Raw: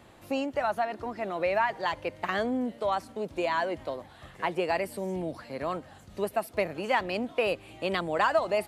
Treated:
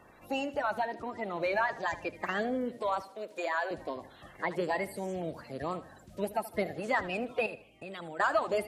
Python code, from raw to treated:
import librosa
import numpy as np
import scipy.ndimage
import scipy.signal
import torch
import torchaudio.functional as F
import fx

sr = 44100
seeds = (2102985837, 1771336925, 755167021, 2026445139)

y = fx.spec_quant(x, sr, step_db=30)
y = fx.peak_eq(y, sr, hz=6200.0, db=7.0, octaves=0.44, at=(1.36, 2.06))
y = fx.highpass(y, sr, hz=460.0, slope=12, at=(3.02, 3.71))
y = fx.level_steps(y, sr, step_db=20, at=(7.46, 8.2))
y = fx.echo_feedback(y, sr, ms=77, feedback_pct=33, wet_db=-16.0)
y = y * librosa.db_to_amplitude(-2.5)